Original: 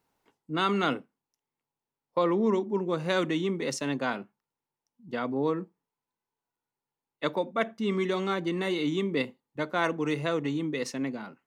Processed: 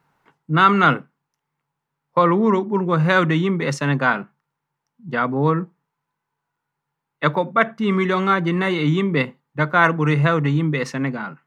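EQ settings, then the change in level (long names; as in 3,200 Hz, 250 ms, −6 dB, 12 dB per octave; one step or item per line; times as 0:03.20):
parametric band 150 Hz +14.5 dB 0.53 octaves
low-shelf EQ 380 Hz +5.5 dB
parametric band 1,400 Hz +15 dB 2 octaves
0.0 dB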